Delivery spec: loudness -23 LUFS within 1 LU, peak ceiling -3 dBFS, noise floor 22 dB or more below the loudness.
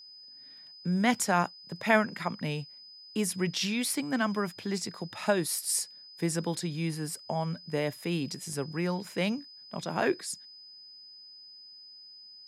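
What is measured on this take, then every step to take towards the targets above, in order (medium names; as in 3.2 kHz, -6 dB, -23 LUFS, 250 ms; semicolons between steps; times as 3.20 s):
dropouts 1; longest dropout 1.9 ms; steady tone 5 kHz; tone level -48 dBFS; loudness -31.0 LUFS; peak level -10.0 dBFS; loudness target -23.0 LUFS
-> interpolate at 8.53 s, 1.9 ms; band-stop 5 kHz, Q 30; trim +8 dB; peak limiter -3 dBFS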